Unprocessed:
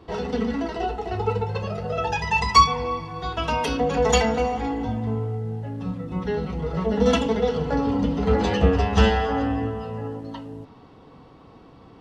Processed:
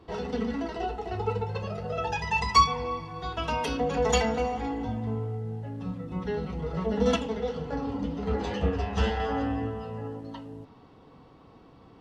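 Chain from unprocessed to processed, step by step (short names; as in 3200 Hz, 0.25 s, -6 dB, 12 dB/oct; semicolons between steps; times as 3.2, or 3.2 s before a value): 7.16–9.2 flange 1.9 Hz, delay 9.1 ms, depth 8.3 ms, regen -48%; gain -5 dB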